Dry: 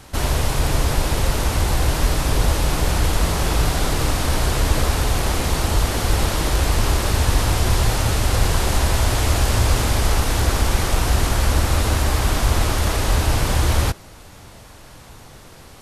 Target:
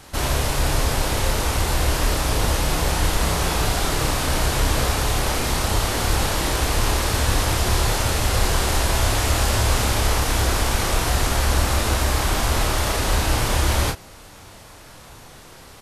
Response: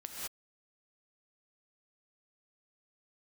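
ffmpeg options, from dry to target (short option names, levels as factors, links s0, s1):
-filter_complex "[0:a]lowshelf=f=320:g=-4.5,asplit=2[s0][s1];[s1]adelay=30,volume=0.531[s2];[s0][s2]amix=inputs=2:normalize=0"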